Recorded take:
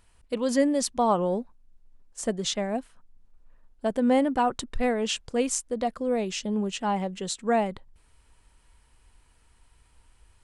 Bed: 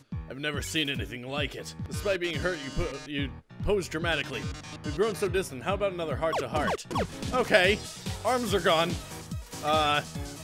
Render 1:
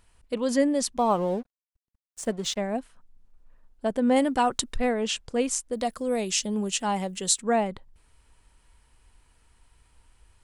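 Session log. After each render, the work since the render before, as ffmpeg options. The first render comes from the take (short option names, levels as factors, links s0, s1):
-filter_complex "[0:a]asettb=1/sr,asplit=3[s0][s1][s2];[s0]atrim=end=0.974[s3];[s1]atrim=start=0.97:end=2.58,asetpts=PTS-STARTPTS,afade=t=in:d=0.004:c=qsin,afade=t=out:st=1.606:d=0.004:c=qsin,aeval=exprs='sgn(val(0))*max(abs(val(0))-0.00447,0)':c=same[s4];[s2]atrim=start=2.576[s5];[s3][s4]acrossfade=d=0.004:c1=hsin:c2=qsin[s6];[s6][s5]acrossfade=d=0.004:c1=qsin:c2=hsin,asettb=1/sr,asplit=3[s7][s8][s9];[s7]atrim=end=4.164[s10];[s8]atrim=start=4.16:end=4.76,asetpts=PTS-STARTPTS,afade=t=in:d=0.004:c=qsin,afade=t=out:st=0.596:d=0.004:c=qsin,highshelf=f=2900:g=10.5[s11];[s9]atrim=start=4.756[s12];[s10][s11]acrossfade=d=0.004:c1=hsin:c2=qsin[s13];[s13][s12]acrossfade=d=0.004:c1=qsin:c2=hsin,asplit=3[s14][s15][s16];[s14]afade=t=out:st=5.72:d=0.02[s17];[s15]aemphasis=mode=production:type=75fm,afade=t=in:st=5.72:d=0.02,afade=t=out:st=7.4:d=0.02[s18];[s16]afade=t=in:st=7.4:d=0.02[s19];[s17][s18][s19]amix=inputs=3:normalize=0"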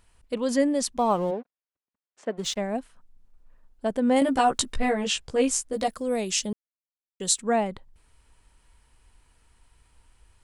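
-filter_complex "[0:a]asplit=3[s0][s1][s2];[s0]afade=t=out:st=1.3:d=0.02[s3];[s1]highpass=290,lowpass=2600,afade=t=in:st=1.3:d=0.02,afade=t=out:st=2.37:d=0.02[s4];[s2]afade=t=in:st=2.37:d=0.02[s5];[s3][s4][s5]amix=inputs=3:normalize=0,asettb=1/sr,asplit=3[s6][s7][s8];[s6]atrim=end=4.204[s9];[s7]atrim=start=4.2:end=5.88,asetpts=PTS-STARTPTS,afade=t=in:d=0.004:c=qsin,afade=t=out:st=1.676:d=0.004:c=qsin,asplit=2[s10][s11];[s11]adelay=15,volume=0.794[s12];[s10][s12]amix=inputs=2:normalize=0,atrim=end_sample=74088[s13];[s8]atrim=start=5.876[s14];[s9][s13]acrossfade=d=0.004:c1=hsin:c2=qsin[s15];[s15][s14]acrossfade=d=0.004:c1=qsin:c2=hsin,asplit=3[s16][s17][s18];[s16]atrim=end=6.53,asetpts=PTS-STARTPTS,afade=t=out:st=6.526:d=0.004:c=hsin[s19];[s17]atrim=start=6.53:end=7.2,asetpts=PTS-STARTPTS,volume=0[s20];[s18]atrim=start=7.2,asetpts=PTS-STARTPTS,afade=t=in:d=0.004:c=hsin[s21];[s19][s20][s21]concat=n=3:v=0:a=1"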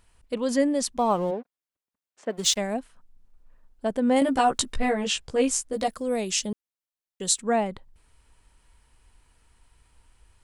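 -filter_complex "[0:a]asplit=3[s0][s1][s2];[s0]afade=t=out:st=2.29:d=0.02[s3];[s1]highshelf=f=3100:g=12,afade=t=in:st=2.29:d=0.02,afade=t=out:st=2.73:d=0.02[s4];[s2]afade=t=in:st=2.73:d=0.02[s5];[s3][s4][s5]amix=inputs=3:normalize=0"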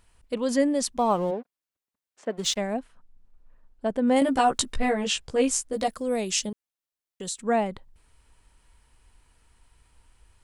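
-filter_complex "[0:a]asettb=1/sr,asplit=3[s0][s1][s2];[s0]atrim=end=2.284[s3];[s1]atrim=start=2.28:end=4.08,asetpts=PTS-STARTPTS,afade=t=in:d=0.004:c=qsin,afade=t=out:st=1.796:d=0.004:c=qsin,highshelf=f=4600:g=-8[s4];[s2]atrim=start=4.076[s5];[s3][s4]acrossfade=d=0.004:c1=hsin:c2=qsin[s6];[s6][s5]acrossfade=d=0.004:c1=qsin:c2=hsin,asettb=1/sr,asplit=3[s7][s8][s9];[s7]atrim=end=6.494[s10];[s8]atrim=start=6.49:end=7.4,asetpts=PTS-STARTPTS,afade=t=in:d=0.004:c=qsin,afade=t=out:st=0.906:d=0.004:c=qsin,acompressor=threshold=0.0251:ratio=3:attack=3.2:release=140:knee=1:detection=peak[s11];[s9]atrim=start=7.396[s12];[s10][s11]acrossfade=d=0.004:c1=hsin:c2=qsin[s13];[s13][s12]acrossfade=d=0.004:c1=qsin:c2=hsin"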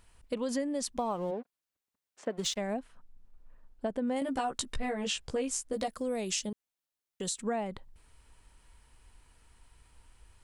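-af "acompressor=threshold=0.0316:ratio=6"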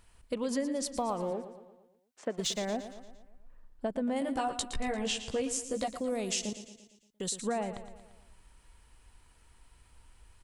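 -af "aecho=1:1:115|230|345|460|575|690:0.251|0.133|0.0706|0.0374|0.0198|0.0105"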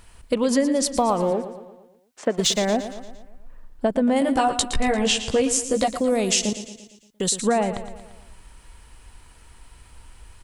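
-af "volume=3.98"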